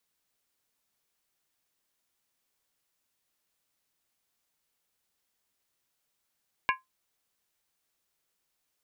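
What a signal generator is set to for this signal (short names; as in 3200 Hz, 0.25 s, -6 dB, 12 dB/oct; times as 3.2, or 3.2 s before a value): skin hit, lowest mode 1040 Hz, decay 0.17 s, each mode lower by 2 dB, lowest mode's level -21 dB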